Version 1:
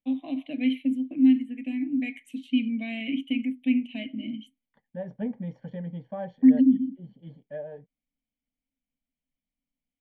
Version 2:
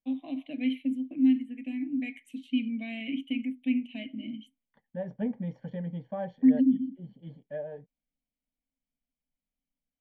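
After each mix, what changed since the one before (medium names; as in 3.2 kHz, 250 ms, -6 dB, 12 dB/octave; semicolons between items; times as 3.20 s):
first voice -4.0 dB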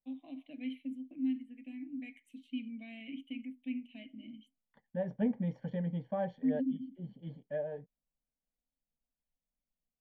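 first voice -11.0 dB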